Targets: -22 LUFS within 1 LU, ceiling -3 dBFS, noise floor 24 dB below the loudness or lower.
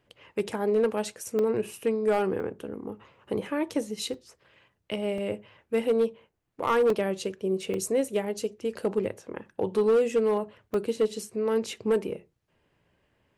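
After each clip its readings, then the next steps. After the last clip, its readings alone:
clipped 0.7%; flat tops at -17.5 dBFS; dropouts 7; longest dropout 2.5 ms; loudness -28.5 LUFS; peak -17.5 dBFS; loudness target -22.0 LUFS
-> clip repair -17.5 dBFS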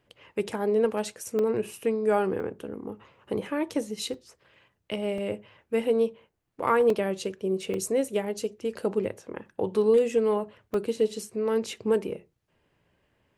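clipped 0.0%; dropouts 7; longest dropout 2.5 ms
-> interpolate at 1.39/2.4/4.14/5.18/6.9/7.74/10.74, 2.5 ms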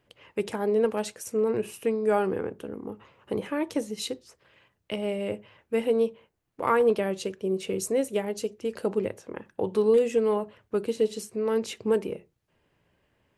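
dropouts 0; loudness -28.0 LUFS; peak -10.5 dBFS; loudness target -22.0 LUFS
-> gain +6 dB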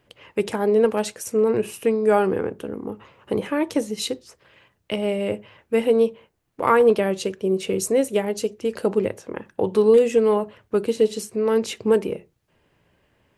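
loudness -22.0 LUFS; peak -4.5 dBFS; noise floor -68 dBFS

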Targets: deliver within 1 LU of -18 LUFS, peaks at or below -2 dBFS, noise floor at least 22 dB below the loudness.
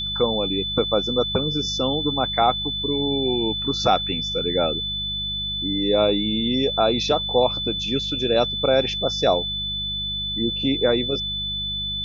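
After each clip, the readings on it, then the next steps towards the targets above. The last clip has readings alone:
hum 50 Hz; harmonics up to 200 Hz; hum level -34 dBFS; steady tone 3500 Hz; tone level -25 dBFS; loudness -21.5 LUFS; peak -5.5 dBFS; loudness target -18.0 LUFS
-> de-hum 50 Hz, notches 4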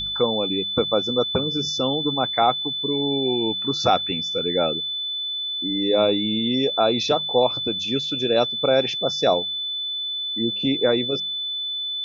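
hum none; steady tone 3500 Hz; tone level -25 dBFS
-> notch 3500 Hz, Q 30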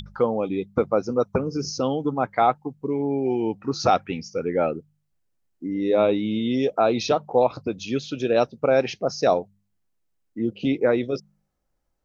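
steady tone none; loudness -24.0 LUFS; peak -6.5 dBFS; loudness target -18.0 LUFS
-> gain +6 dB; limiter -2 dBFS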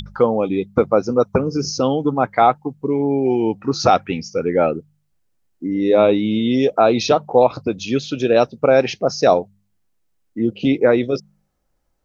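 loudness -18.0 LUFS; peak -2.0 dBFS; noise floor -67 dBFS

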